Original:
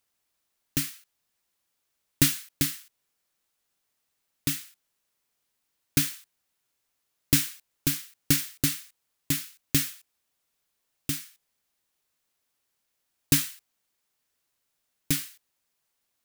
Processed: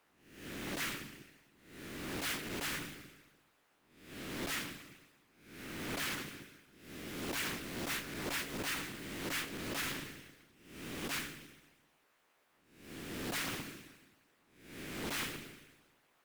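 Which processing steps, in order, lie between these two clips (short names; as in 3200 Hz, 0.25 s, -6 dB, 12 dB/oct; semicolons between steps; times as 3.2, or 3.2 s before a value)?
spectral swells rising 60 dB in 0.70 s; three-band isolator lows -14 dB, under 240 Hz, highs -16 dB, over 2600 Hz; Schroeder reverb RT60 1.2 s, combs from 30 ms, DRR 14 dB; reverse; compressor 8:1, threshold -43 dBFS, peak gain reduction 21.5 dB; reverse; sine folder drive 10 dB, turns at -30.5 dBFS; harmonic-percussive split harmonic -18 dB; Doppler distortion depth 0.83 ms; gain +3 dB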